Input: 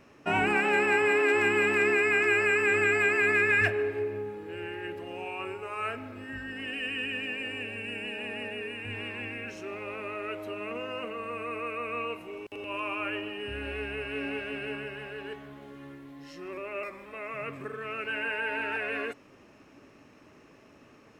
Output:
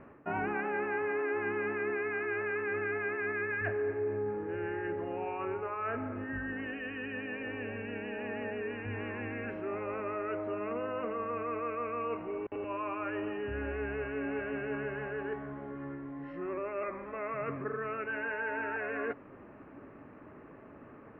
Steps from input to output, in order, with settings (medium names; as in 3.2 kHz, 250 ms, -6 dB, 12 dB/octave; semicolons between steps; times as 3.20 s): reverse; compression 4:1, threshold -36 dBFS, peak gain reduction 13 dB; reverse; low-pass 1.8 kHz 24 dB/octave; trim +4.5 dB